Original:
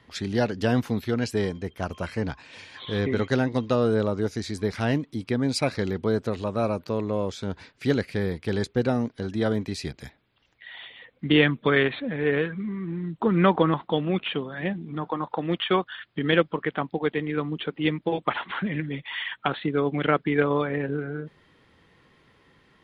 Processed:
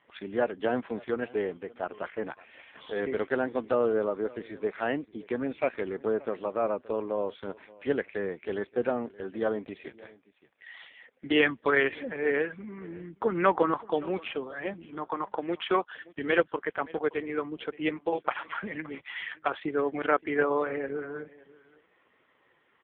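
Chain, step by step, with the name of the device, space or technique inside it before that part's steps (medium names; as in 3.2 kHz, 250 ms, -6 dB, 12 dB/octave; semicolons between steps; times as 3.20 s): satellite phone (band-pass 380–3100 Hz; delay 572 ms -21.5 dB; AMR-NB 5.15 kbps 8 kHz)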